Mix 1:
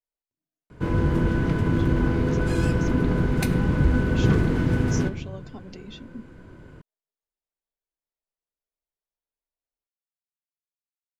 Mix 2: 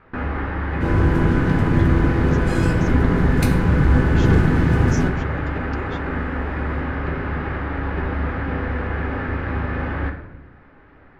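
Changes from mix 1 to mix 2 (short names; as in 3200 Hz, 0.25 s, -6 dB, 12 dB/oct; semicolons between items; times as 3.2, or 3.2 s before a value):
first sound: unmuted; second sound: send +9.0 dB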